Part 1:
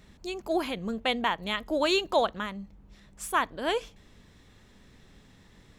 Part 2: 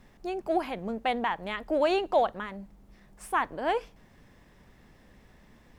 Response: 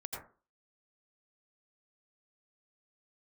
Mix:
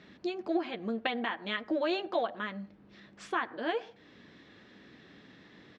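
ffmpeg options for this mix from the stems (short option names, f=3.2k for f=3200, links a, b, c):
-filter_complex "[0:a]volume=2.5dB[a];[1:a]adelay=9.1,volume=-8.5dB,asplit=3[b][c][d];[c]volume=-15.5dB[e];[d]apad=whole_len=255050[f];[a][f]sidechaincompress=threshold=-44dB:ratio=5:attack=7.9:release=356[g];[2:a]atrim=start_sample=2205[h];[e][h]afir=irnorm=-1:irlink=0[i];[g][b][i]amix=inputs=3:normalize=0,highpass=180,equalizer=f=310:t=q:w=4:g=6,equalizer=f=890:t=q:w=4:g=-4,equalizer=f=1.7k:t=q:w=4:g=4,lowpass=f=4.7k:w=0.5412,lowpass=f=4.7k:w=1.3066"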